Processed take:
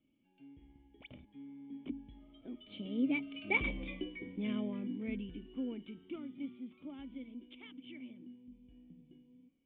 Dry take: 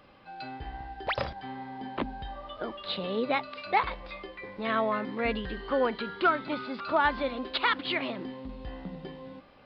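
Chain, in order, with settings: Doppler pass-by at 3.79 s, 21 m/s, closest 4.9 m; cascade formant filter i; trim +15.5 dB

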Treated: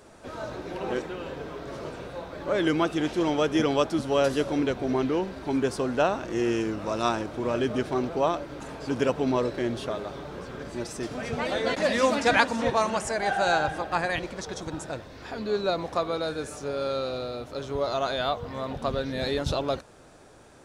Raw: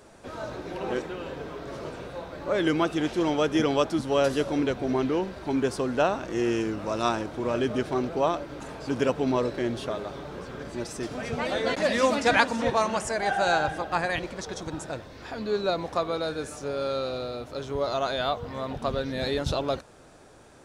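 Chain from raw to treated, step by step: pre-echo 186 ms -22 dB

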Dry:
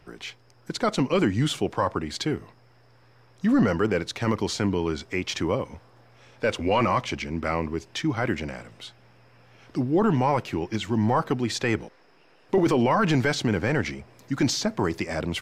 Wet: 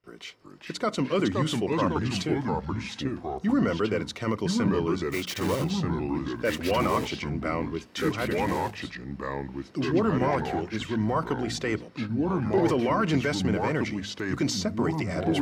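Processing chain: 5.04–5.73 s: block-companded coder 3-bit; gate with hold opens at -47 dBFS; hum notches 60/120/180/240/300 Hz; comb of notches 830 Hz; ever faster or slower copies 363 ms, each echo -3 st, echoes 2; trim -2.5 dB

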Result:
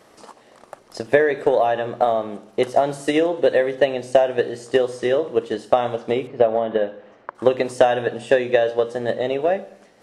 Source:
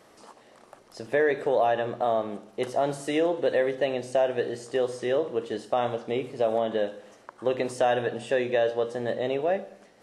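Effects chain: 6.27–7.35 s: low-pass 2.5 kHz 12 dB/octave; transient shaper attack +8 dB, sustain 0 dB; trim +3.5 dB

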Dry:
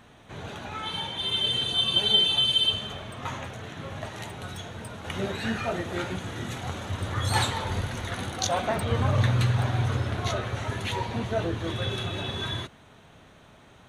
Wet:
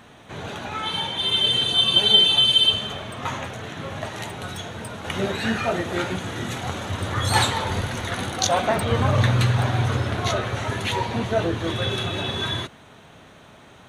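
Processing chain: bass shelf 72 Hz -9 dB; trim +6 dB

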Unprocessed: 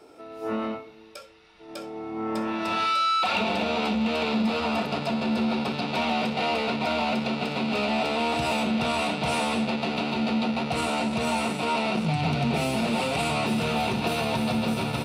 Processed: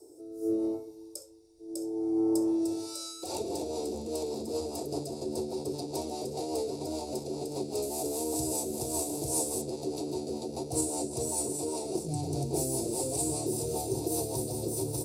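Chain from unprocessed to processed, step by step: 7.82–9.62 s: CVSD coder 64 kbps; FFT filter 130 Hz 0 dB, 210 Hz -20 dB, 330 Hz +9 dB, 610 Hz -6 dB, 880 Hz -8 dB, 1.4 kHz -29 dB, 3 kHz -26 dB, 4.9 kHz +1 dB, 7.8 kHz +14 dB; rotary cabinet horn 0.8 Hz, later 5 Hz, at 2.63 s; trim -1.5 dB

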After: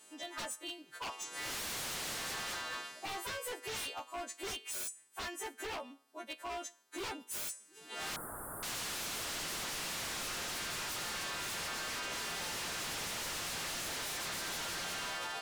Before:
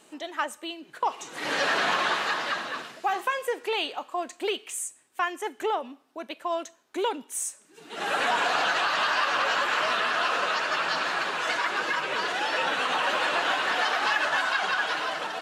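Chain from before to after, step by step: partials quantised in pitch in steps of 2 st; wavefolder -26 dBFS; 8.16–8.63 s: elliptic band-stop 1.4–9.5 kHz, stop band 40 dB; trim -9 dB

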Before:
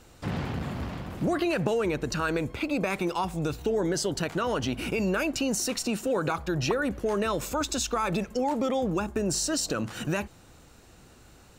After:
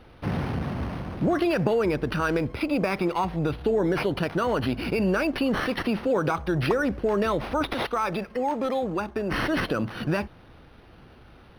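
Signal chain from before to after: 7.70–9.35 s: bass shelf 300 Hz -9 dB; decimation joined by straight lines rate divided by 6×; trim +3.5 dB

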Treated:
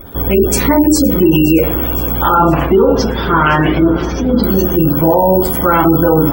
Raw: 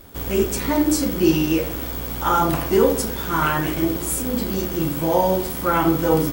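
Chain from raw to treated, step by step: 2.35–4.44 s: steep low-pass 6.1 kHz 72 dB/octave; spectral gate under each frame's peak -25 dB strong; thinning echo 516 ms, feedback 59%, level -19.5 dB; loudness maximiser +13 dB; trim -1 dB

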